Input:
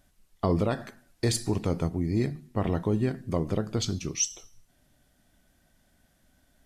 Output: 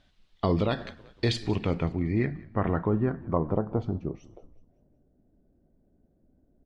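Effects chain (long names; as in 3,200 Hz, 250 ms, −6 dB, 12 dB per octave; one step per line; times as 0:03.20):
low-pass filter sweep 3,700 Hz → 410 Hz, 0:01.12–0:05.08
echo with shifted repeats 187 ms, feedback 50%, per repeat −43 Hz, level −21.5 dB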